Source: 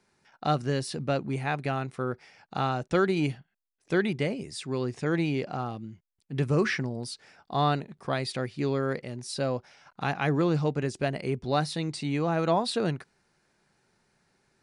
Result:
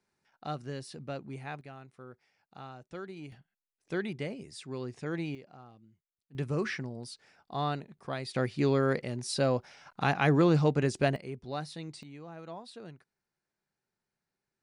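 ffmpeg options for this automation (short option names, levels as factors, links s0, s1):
-af "asetnsamples=n=441:p=0,asendcmd='1.61 volume volume -18dB;3.32 volume volume -8dB;5.35 volume volume -19.5dB;6.35 volume volume -7dB;8.36 volume volume 1.5dB;11.16 volume volume -10.5dB;12.03 volume volume -19dB',volume=0.282"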